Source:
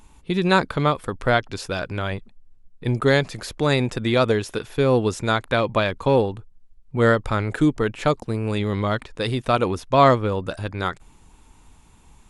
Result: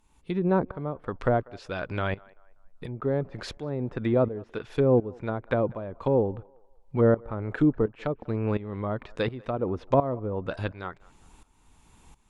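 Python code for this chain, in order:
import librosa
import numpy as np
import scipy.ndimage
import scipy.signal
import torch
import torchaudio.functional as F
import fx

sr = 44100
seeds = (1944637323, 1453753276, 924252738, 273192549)

y = fx.low_shelf(x, sr, hz=160.0, db=-2.5)
y = fx.env_lowpass_down(y, sr, base_hz=650.0, full_db=-17.5)
y = fx.tremolo_shape(y, sr, shape='saw_up', hz=1.4, depth_pct=85)
y = fx.echo_banded(y, sr, ms=193, feedback_pct=42, hz=960.0, wet_db=-23.0)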